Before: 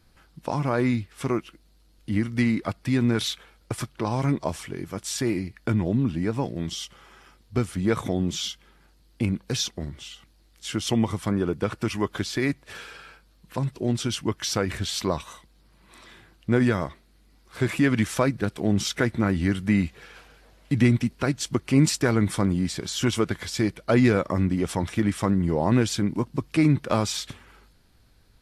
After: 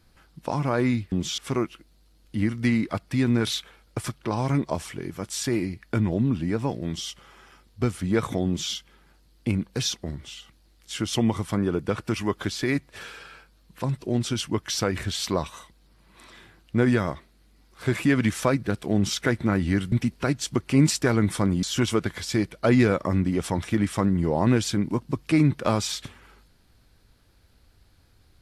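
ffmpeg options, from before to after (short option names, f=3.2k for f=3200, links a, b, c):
-filter_complex "[0:a]asplit=5[a][b][c][d][e];[a]atrim=end=1.122[f];[b]atrim=start=8.198:end=8.462[g];[c]atrim=start=1.118:end=19.662[h];[d]atrim=start=20.908:end=22.622[i];[e]atrim=start=22.878[j];[f][g]acrossfade=d=0.004:c1=hsin:c2=hsin[k];[k][h]acrossfade=d=0.004:c1=hsin:c2=hsin[l];[l][i]acrossfade=d=0.004:c1=hsin:c2=hsin[m];[m][j]acrossfade=d=0.004:c1=hsin:c2=hsin"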